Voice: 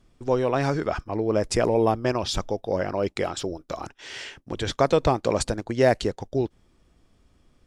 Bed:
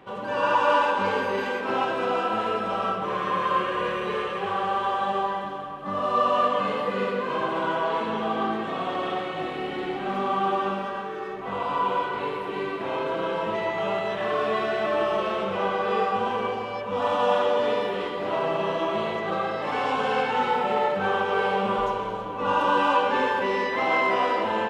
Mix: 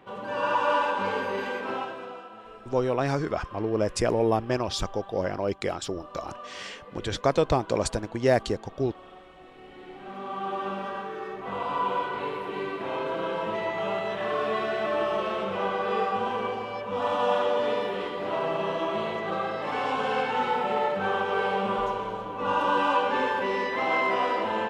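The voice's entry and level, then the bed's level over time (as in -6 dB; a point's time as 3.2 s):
2.45 s, -2.5 dB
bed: 1.65 s -3.5 dB
2.32 s -20 dB
9.41 s -20 dB
10.89 s -2.5 dB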